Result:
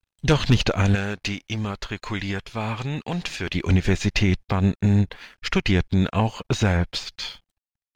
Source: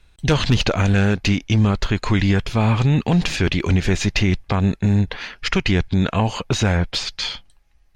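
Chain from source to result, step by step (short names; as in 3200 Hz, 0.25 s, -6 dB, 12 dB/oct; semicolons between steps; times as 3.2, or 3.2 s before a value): crossover distortion -48 dBFS; 0.95–3.55 low shelf 390 Hz -8.5 dB; upward expander 1.5:1, over -34 dBFS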